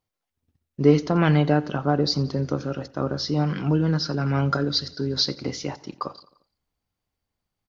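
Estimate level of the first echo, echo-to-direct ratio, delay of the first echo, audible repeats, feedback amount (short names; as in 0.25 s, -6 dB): -21.0 dB, -19.5 dB, 87 ms, 3, 57%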